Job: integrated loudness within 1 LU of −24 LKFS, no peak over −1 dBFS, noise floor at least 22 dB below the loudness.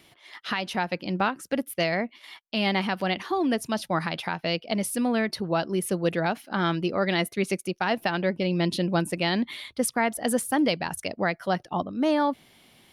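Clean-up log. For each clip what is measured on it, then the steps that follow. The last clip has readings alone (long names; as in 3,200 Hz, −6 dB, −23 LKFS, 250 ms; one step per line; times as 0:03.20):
integrated loudness −27.0 LKFS; sample peak −13.0 dBFS; target loudness −24.0 LKFS
→ level +3 dB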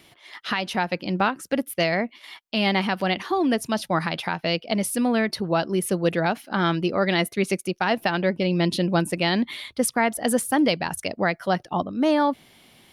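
integrated loudness −24.0 LKFS; sample peak −10.0 dBFS; background noise floor −56 dBFS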